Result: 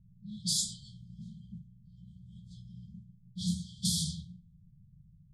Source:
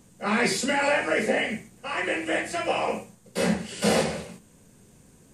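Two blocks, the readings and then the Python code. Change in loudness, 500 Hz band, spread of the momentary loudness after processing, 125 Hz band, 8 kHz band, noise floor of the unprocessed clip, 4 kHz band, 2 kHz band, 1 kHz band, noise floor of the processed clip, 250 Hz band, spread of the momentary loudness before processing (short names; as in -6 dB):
-7.5 dB, under -40 dB, 21 LU, -3.0 dB, -2.0 dB, -56 dBFS, -4.0 dB, under -40 dB, under -40 dB, -61 dBFS, -11.0 dB, 12 LU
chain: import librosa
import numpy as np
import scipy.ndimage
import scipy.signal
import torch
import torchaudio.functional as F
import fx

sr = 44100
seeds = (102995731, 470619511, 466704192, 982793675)

y = fx.brickwall_bandstop(x, sr, low_hz=190.0, high_hz=3100.0)
y = y + 10.0 ** (-23.0 / 20.0) * np.pad(y, (int(289 * sr / 1000.0), 0))[:len(y)]
y = fx.env_lowpass(y, sr, base_hz=390.0, full_db=-27.5)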